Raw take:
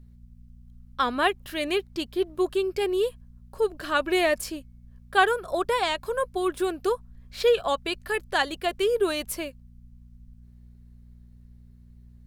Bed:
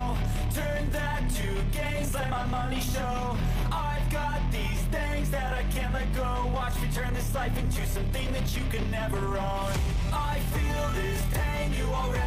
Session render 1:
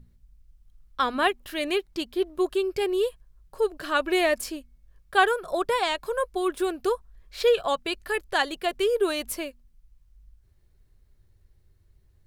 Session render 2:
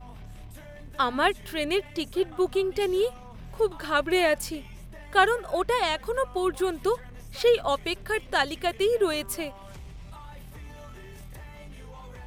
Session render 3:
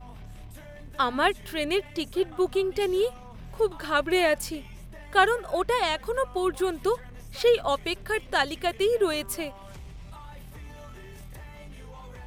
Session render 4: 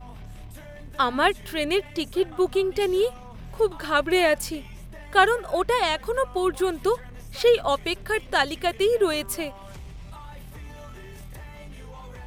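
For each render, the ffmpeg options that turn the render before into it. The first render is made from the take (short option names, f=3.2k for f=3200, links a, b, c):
-af "bandreject=f=60:t=h:w=4,bandreject=f=120:t=h:w=4,bandreject=f=180:t=h:w=4,bandreject=f=240:t=h:w=4"
-filter_complex "[1:a]volume=-16dB[a];[0:a][a]amix=inputs=2:normalize=0"
-af anull
-af "volume=2.5dB"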